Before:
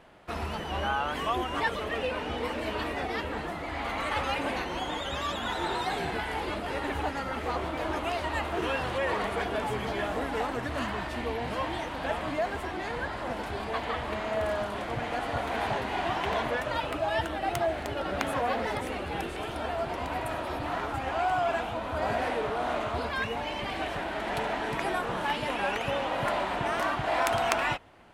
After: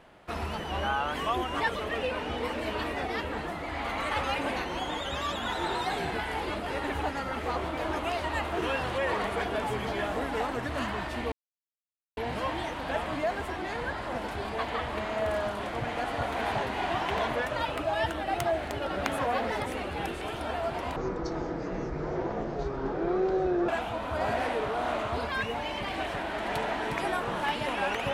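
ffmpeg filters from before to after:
-filter_complex "[0:a]asplit=4[s0][s1][s2][s3];[s0]atrim=end=11.32,asetpts=PTS-STARTPTS,afade=t=out:st=11.316:d=0.004:c=hsin,apad=pad_dur=0.85[s4];[s1]atrim=start=11.32:end=20.114,asetpts=PTS-STARTPTS,afade=t=in:d=0.004:c=hsin[s5];[s2]atrim=start=20.11:end=21.5,asetpts=PTS-STARTPTS,asetrate=22491,aresample=44100,atrim=end_sample=120194,asetpts=PTS-STARTPTS[s6];[s3]atrim=start=21.496[s7];[s4][s5]concat=n=2:v=0:a=1[s8];[s8][s6]acrossfade=d=0.004:c1=hsin:c2=hsin[s9];[s9][s7]acrossfade=d=0.004:c1=hsin:c2=hsin"

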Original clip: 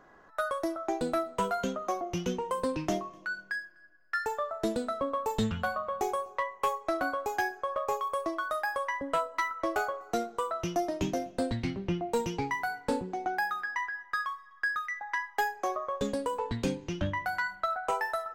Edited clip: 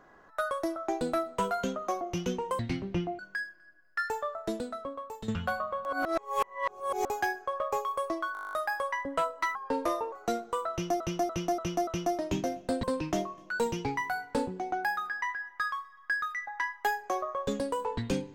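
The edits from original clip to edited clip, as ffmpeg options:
-filter_complex "[0:a]asplit=24[s0][s1][s2][s3][s4][s5][s6][s7][s8][s9][s10][s11][s12][s13][s14][s15][s16][s17][s18][s19][s20][s21][s22][s23];[s0]atrim=end=2.592[s24];[s1]atrim=start=11.528:end=12.132[s25];[s2]atrim=start=3.348:end=5.44,asetpts=PTS-STARTPTS,afade=t=out:st=0.852:d=1.24:silence=0.211349[s26];[s3]atrim=start=5.44:end=6.012,asetpts=PTS-STARTPTS,afade=t=in:d=0.004:c=hsin:silence=0.211349[s27];[s4]atrim=start=6.008:end=7.212,asetpts=PTS-STARTPTS,areverse[s28];[s5]atrim=start=7.208:end=8.512[s29];[s6]atrim=start=8.488:end=8.512[s30];[s7]atrim=start=8.488:end=8.512[s31];[s8]atrim=start=8.488:end=8.512[s32];[s9]atrim=start=8.488:end=8.512[s33];[s10]atrim=start=8.488:end=8.512[s34];[s11]atrim=start=8.488:end=8.512[s35];[s12]atrim=start=8.488:end=8.512[s36];[s13]atrim=start=8.488:end=8.512[s37];[s14]atrim=start=8.488:end=8.512[s38];[s15]atrim=start=8.488:end=9.514[s39];[s16]atrim=start=9.51:end=9.98,asetpts=PTS-STARTPTS,asetrate=36162,aresample=44100[s40];[s17]atrim=start=9.976:end=10.862[s41];[s18]atrim=start=10.568:end=10.862[s42];[s19]atrim=start=10.568:end=10.862[s43];[s20]atrim=start=10.568:end=10.862[s44];[s21]atrim=start=10.568:end=11.532[s45];[s22]atrim=start=2.588:end=3.352[s46];[s23]atrim=start=12.128[s47];[s24][s25]acrossfade=d=0.004:c1=hsin:c2=hsin[s48];[s26][s27]concat=n=2:v=0:a=1[s49];[s48][s49]acrossfade=d=0.004:c1=hsin:c2=hsin[s50];[s50][s28]acrossfade=d=0.004:c1=hsin:c2=hsin[s51];[s51][s29]acrossfade=d=0.004:c1=hsin:c2=hsin[s52];[s52][s30]acrossfade=d=0.004:c1=hsin:c2=hsin[s53];[s53][s31]acrossfade=d=0.004:c1=hsin:c2=hsin[s54];[s54][s32]acrossfade=d=0.004:c1=hsin:c2=hsin[s55];[s55][s33]acrossfade=d=0.004:c1=hsin:c2=hsin[s56];[s56][s34]acrossfade=d=0.004:c1=hsin:c2=hsin[s57];[s57][s35]acrossfade=d=0.004:c1=hsin:c2=hsin[s58];[s58][s36]acrossfade=d=0.004:c1=hsin:c2=hsin[s59];[s59][s37]acrossfade=d=0.004:c1=hsin:c2=hsin[s60];[s60][s38]acrossfade=d=0.004:c1=hsin:c2=hsin[s61];[s61][s39]acrossfade=d=0.004:c1=hsin:c2=hsin[s62];[s62][s40]acrossfade=d=0.004:c1=hsin:c2=hsin[s63];[s63][s41]acrossfade=d=0.004:c1=hsin:c2=hsin[s64];[s64][s42]acrossfade=d=0.004:c1=hsin:c2=hsin[s65];[s65][s43]acrossfade=d=0.004:c1=hsin:c2=hsin[s66];[s66][s44]acrossfade=d=0.004:c1=hsin:c2=hsin[s67];[s67][s45]acrossfade=d=0.004:c1=hsin:c2=hsin[s68];[s68][s46]acrossfade=d=0.004:c1=hsin:c2=hsin[s69];[s69][s47]acrossfade=d=0.004:c1=hsin:c2=hsin"

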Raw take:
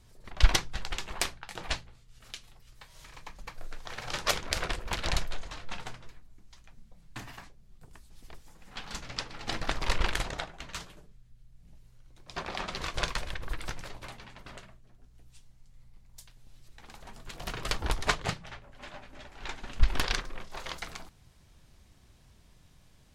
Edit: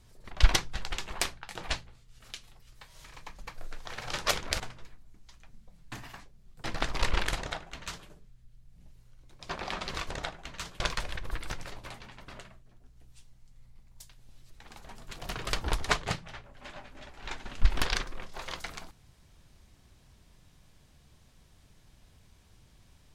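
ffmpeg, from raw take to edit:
-filter_complex "[0:a]asplit=5[s0][s1][s2][s3][s4];[s0]atrim=end=4.602[s5];[s1]atrim=start=5.838:end=7.882[s6];[s2]atrim=start=9.508:end=12.982[s7];[s3]atrim=start=10.258:end=10.952[s8];[s4]atrim=start=12.978[s9];[s5][s6]acrossfade=d=0.004:c1=hsin:c2=hsin[s10];[s10][s7]acrossfade=d=0.004:c1=hsin:c2=hsin[s11];[s11][s8]acrossfade=d=0.004:c1=hsin:c2=hsin[s12];[s12][s9]acrossfade=d=0.004:c1=hsin:c2=hsin"

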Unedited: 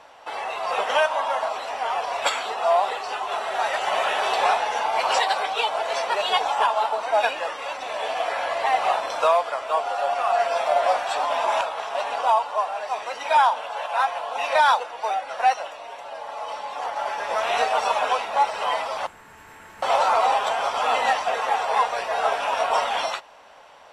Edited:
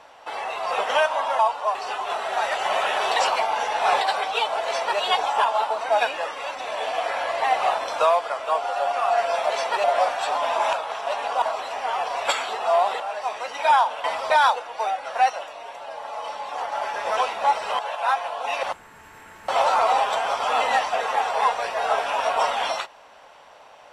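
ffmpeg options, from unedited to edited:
-filter_complex "[0:a]asplit=14[s0][s1][s2][s3][s4][s5][s6][s7][s8][s9][s10][s11][s12][s13];[s0]atrim=end=1.392[s14];[s1]atrim=start=12.298:end=12.662[s15];[s2]atrim=start=2.968:end=4.382[s16];[s3]atrim=start=4.378:end=5.232,asetpts=PTS-STARTPTS,areverse[s17];[s4]atrim=start=5.228:end=10.722[s18];[s5]atrim=start=5.878:end=6.222[s19];[s6]atrim=start=10.718:end=12.302[s20];[s7]atrim=start=1.388:end=2.972[s21];[s8]atrim=start=12.658:end=13.702[s22];[s9]atrim=start=18.708:end=18.972[s23];[s10]atrim=start=14.538:end=17.412[s24];[s11]atrim=start=18.088:end=18.712[s25];[s12]atrim=start=13.698:end=14.542[s26];[s13]atrim=start=18.968[s27];[s14][s15]acrossfade=d=0.004:c1=hsin:c2=hsin[s28];[s28][s16]acrossfade=d=0.004:c1=hsin:c2=hsin[s29];[s29][s17]acrossfade=d=0.004:c1=hsin:c2=hsin[s30];[s30][s18]acrossfade=d=0.004:c1=hsin:c2=hsin[s31];[s31][s19]acrossfade=d=0.004:c1=hsin:c2=hsin[s32];[s32][s20]acrossfade=d=0.004:c1=hsin:c2=hsin[s33];[s33][s21]acrossfade=d=0.004:c1=hsin:c2=hsin[s34];[s34][s22]acrossfade=d=0.004:c1=hsin:c2=hsin[s35];[s35][s23]acrossfade=d=0.004:c1=hsin:c2=hsin[s36];[s36][s24]acrossfade=d=0.004:c1=hsin:c2=hsin[s37];[s37][s25]acrossfade=d=0.004:c1=hsin:c2=hsin[s38];[s38][s26]acrossfade=d=0.004:c1=hsin:c2=hsin[s39];[s39][s27]acrossfade=d=0.004:c1=hsin:c2=hsin"

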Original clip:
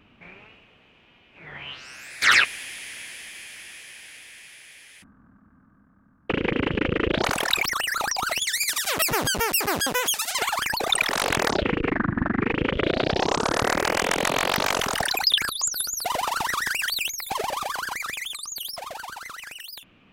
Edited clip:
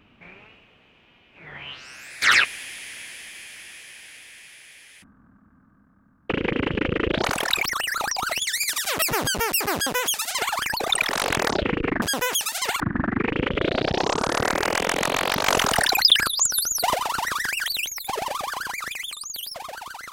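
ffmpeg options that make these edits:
-filter_complex "[0:a]asplit=5[s0][s1][s2][s3][s4];[s0]atrim=end=12.022[s5];[s1]atrim=start=9.748:end=10.532[s6];[s2]atrim=start=12.018:end=14.692[s7];[s3]atrim=start=14.688:end=16.182,asetpts=PTS-STARTPTS,volume=1.68[s8];[s4]atrim=start=16.178[s9];[s5][s6]acrossfade=d=0.004:c1=hsin:c2=hsin[s10];[s10][s7]acrossfade=d=0.004:c1=hsin:c2=hsin[s11];[s11][s8]acrossfade=d=0.004:c1=hsin:c2=hsin[s12];[s12][s9]acrossfade=d=0.004:c1=hsin:c2=hsin"

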